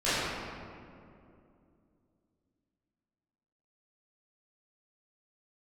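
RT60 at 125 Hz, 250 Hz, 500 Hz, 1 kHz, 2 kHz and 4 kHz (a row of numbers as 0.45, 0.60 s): 3.3, 3.5, 2.9, 2.3, 1.8, 1.2 s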